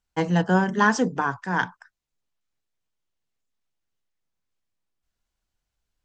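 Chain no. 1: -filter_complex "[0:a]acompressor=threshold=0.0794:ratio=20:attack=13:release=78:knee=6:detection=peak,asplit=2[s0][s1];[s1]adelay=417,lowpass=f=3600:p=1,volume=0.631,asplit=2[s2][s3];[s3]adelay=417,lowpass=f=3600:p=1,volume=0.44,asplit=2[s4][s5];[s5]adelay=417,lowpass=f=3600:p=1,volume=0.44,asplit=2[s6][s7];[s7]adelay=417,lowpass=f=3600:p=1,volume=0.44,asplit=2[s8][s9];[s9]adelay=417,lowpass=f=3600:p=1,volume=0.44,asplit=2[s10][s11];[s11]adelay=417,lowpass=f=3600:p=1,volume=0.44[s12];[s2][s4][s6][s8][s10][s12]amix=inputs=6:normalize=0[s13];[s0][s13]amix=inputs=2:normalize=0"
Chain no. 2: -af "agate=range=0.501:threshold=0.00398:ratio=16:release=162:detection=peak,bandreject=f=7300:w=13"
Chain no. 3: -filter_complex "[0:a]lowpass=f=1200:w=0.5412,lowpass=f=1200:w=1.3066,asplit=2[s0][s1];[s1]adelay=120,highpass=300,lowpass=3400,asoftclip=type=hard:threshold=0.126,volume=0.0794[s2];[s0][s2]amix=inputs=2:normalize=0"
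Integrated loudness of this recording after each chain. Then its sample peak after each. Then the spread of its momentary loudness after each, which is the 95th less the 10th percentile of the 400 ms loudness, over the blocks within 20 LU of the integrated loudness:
-27.0 LUFS, -23.0 LUFS, -24.0 LUFS; -11.5 dBFS, -6.0 dBFS, -9.5 dBFS; 16 LU, 7 LU, 8 LU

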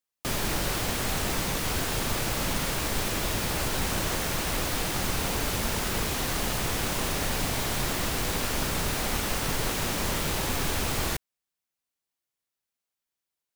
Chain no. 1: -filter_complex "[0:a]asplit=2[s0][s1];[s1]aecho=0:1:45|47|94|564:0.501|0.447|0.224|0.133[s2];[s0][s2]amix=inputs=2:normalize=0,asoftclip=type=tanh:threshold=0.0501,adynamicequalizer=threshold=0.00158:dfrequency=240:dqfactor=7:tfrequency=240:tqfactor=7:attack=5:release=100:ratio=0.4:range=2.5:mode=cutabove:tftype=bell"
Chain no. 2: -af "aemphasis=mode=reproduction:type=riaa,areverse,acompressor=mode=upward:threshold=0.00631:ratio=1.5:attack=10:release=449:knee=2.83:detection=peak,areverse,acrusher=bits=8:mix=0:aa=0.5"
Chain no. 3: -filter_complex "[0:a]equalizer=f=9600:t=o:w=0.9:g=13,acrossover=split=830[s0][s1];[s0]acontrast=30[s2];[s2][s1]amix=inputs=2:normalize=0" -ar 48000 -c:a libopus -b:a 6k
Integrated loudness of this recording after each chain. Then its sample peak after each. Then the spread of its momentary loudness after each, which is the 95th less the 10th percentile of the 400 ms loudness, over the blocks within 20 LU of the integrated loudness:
-30.0 LUFS, -22.0 LUFS, -28.5 LUFS; -25.0 dBFS, -2.5 dBFS, -12.0 dBFS; 1 LU, 2 LU, 2 LU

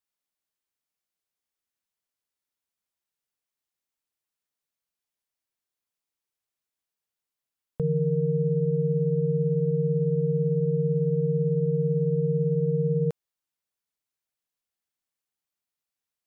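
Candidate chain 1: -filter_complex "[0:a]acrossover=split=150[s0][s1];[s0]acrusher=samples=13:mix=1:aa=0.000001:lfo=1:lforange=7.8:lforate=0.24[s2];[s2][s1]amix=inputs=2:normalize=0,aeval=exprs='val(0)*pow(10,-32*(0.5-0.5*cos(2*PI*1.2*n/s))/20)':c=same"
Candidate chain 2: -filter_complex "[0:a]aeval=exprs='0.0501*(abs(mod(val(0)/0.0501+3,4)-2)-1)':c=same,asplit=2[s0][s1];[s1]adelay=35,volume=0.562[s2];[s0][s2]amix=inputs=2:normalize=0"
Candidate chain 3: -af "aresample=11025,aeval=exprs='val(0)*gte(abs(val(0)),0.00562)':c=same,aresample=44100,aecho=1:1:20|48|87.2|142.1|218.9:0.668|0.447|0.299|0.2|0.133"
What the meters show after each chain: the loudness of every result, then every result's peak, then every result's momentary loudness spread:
-31.0 LUFS, -30.5 LUFS, -21.0 LUFS; -16.5 dBFS, -22.0 dBFS, -12.5 dBFS; 18 LU, 1 LU, 1 LU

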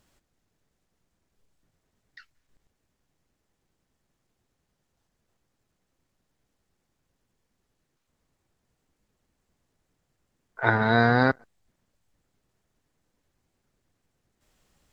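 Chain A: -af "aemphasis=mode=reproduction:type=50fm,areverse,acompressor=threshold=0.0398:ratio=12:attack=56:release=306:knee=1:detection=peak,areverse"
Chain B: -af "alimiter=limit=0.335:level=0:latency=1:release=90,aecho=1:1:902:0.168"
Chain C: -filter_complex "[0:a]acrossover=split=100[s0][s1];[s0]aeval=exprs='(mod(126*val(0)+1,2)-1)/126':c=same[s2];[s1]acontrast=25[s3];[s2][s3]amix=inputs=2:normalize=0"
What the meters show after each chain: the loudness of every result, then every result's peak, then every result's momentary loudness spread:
-30.5 LUFS, -26.0 LUFS, -18.5 LUFS; -8.0 dBFS, -9.5 dBFS, -2.5 dBFS; 7 LU, 18 LU, 7 LU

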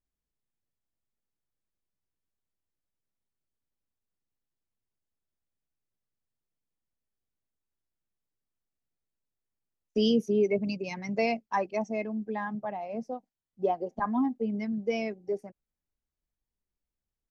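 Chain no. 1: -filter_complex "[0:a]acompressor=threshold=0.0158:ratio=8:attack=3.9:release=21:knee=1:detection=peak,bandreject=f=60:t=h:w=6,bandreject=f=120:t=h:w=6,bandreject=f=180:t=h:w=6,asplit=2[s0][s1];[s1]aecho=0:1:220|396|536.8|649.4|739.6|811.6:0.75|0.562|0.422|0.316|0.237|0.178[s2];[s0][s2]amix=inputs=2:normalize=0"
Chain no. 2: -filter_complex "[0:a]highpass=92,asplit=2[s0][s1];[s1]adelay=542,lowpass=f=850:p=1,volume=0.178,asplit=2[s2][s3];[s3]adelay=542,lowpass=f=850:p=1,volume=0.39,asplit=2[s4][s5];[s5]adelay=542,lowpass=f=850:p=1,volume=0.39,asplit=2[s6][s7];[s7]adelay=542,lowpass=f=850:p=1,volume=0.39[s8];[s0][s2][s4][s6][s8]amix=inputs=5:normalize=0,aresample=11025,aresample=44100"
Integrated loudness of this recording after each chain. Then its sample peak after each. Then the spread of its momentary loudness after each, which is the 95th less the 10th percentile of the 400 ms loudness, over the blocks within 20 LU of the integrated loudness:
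-36.0 LUFS, -30.5 LUFS; -21.0 dBFS, -15.5 dBFS; 8 LU, 14 LU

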